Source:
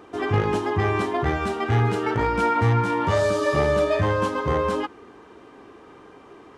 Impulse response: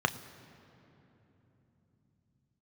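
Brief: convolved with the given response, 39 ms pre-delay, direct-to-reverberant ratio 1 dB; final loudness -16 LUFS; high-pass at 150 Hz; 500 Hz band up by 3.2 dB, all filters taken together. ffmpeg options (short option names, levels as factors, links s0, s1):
-filter_complex "[0:a]highpass=150,equalizer=f=500:t=o:g=4,asplit=2[s0][s1];[1:a]atrim=start_sample=2205,adelay=39[s2];[s1][s2]afir=irnorm=-1:irlink=0,volume=0.282[s3];[s0][s3]amix=inputs=2:normalize=0,volume=1.19"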